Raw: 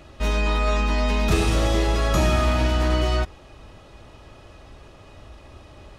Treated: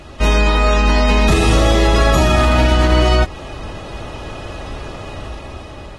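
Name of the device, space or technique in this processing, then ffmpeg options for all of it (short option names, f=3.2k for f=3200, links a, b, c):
low-bitrate web radio: -af "dynaudnorm=f=350:g=7:m=8dB,alimiter=limit=-13.5dB:level=0:latency=1:release=176,volume=9dB" -ar 48000 -c:a aac -b:a 32k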